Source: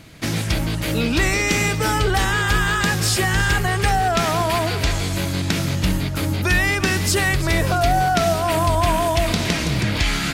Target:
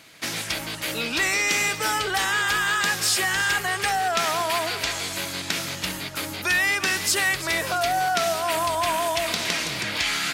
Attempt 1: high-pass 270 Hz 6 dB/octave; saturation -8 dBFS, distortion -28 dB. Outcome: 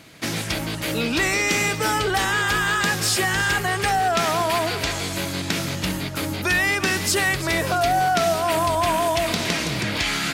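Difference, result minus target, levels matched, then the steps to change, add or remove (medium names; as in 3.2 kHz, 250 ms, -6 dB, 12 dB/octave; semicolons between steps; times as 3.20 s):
250 Hz band +7.0 dB
change: high-pass 1 kHz 6 dB/octave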